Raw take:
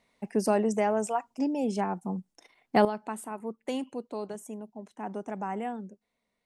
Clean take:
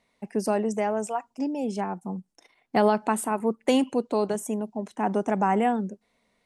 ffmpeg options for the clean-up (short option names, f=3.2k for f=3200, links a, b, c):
-af "asetnsamples=n=441:p=0,asendcmd='2.85 volume volume 11dB',volume=0dB"